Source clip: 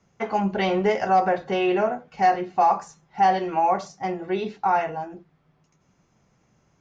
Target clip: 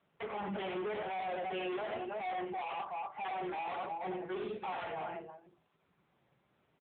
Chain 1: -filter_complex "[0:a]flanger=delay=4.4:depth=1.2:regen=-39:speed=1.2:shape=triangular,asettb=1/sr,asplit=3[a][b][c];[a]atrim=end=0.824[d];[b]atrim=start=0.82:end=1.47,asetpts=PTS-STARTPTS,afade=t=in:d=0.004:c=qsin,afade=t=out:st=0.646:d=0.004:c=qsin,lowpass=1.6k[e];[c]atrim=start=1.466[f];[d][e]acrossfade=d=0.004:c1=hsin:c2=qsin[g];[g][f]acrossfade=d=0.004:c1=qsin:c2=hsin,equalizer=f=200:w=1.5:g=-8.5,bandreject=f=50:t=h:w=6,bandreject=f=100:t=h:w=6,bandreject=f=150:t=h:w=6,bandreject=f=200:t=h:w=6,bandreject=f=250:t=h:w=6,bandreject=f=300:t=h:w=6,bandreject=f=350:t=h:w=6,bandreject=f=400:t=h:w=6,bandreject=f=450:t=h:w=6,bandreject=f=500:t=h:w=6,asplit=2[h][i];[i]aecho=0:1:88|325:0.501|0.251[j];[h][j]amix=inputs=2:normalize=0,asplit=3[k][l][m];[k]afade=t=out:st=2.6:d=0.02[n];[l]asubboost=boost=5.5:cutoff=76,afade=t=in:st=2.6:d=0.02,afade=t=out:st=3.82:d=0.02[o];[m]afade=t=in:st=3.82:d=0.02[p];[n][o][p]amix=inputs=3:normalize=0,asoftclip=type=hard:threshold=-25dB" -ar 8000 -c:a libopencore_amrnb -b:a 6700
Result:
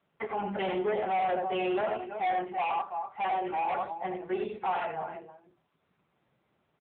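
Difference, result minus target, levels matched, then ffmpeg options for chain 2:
hard clip: distortion -5 dB
-filter_complex "[0:a]flanger=delay=4.4:depth=1.2:regen=-39:speed=1.2:shape=triangular,asettb=1/sr,asplit=3[a][b][c];[a]atrim=end=0.824[d];[b]atrim=start=0.82:end=1.47,asetpts=PTS-STARTPTS,afade=t=in:d=0.004:c=qsin,afade=t=out:st=0.646:d=0.004:c=qsin,lowpass=1.6k[e];[c]atrim=start=1.466[f];[d][e]acrossfade=d=0.004:c1=hsin:c2=qsin[g];[g][f]acrossfade=d=0.004:c1=qsin:c2=hsin,equalizer=f=200:w=1.5:g=-8.5,bandreject=f=50:t=h:w=6,bandreject=f=100:t=h:w=6,bandreject=f=150:t=h:w=6,bandreject=f=200:t=h:w=6,bandreject=f=250:t=h:w=6,bandreject=f=300:t=h:w=6,bandreject=f=350:t=h:w=6,bandreject=f=400:t=h:w=6,bandreject=f=450:t=h:w=6,bandreject=f=500:t=h:w=6,asplit=2[h][i];[i]aecho=0:1:88|325:0.501|0.251[j];[h][j]amix=inputs=2:normalize=0,asplit=3[k][l][m];[k]afade=t=out:st=2.6:d=0.02[n];[l]asubboost=boost=5.5:cutoff=76,afade=t=in:st=2.6:d=0.02,afade=t=out:st=3.82:d=0.02[o];[m]afade=t=in:st=3.82:d=0.02[p];[n][o][p]amix=inputs=3:normalize=0,asoftclip=type=hard:threshold=-35dB" -ar 8000 -c:a libopencore_amrnb -b:a 6700

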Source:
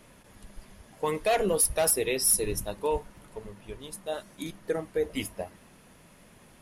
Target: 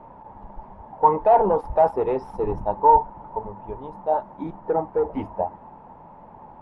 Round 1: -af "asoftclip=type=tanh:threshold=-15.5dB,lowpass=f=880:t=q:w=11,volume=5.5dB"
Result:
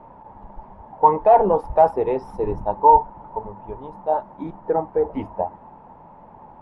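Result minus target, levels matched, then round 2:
soft clip: distortion -10 dB
-af "asoftclip=type=tanh:threshold=-23dB,lowpass=f=880:t=q:w=11,volume=5.5dB"

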